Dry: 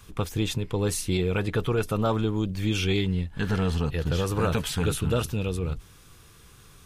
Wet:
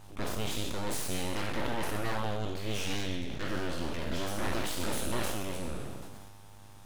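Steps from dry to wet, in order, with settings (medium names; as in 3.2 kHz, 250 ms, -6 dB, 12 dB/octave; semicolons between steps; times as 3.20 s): spectral sustain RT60 1.32 s; mains buzz 100 Hz, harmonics 8, -43 dBFS -5 dB/octave; full-wave rectifier; decay stretcher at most 26 dB/s; trim -8 dB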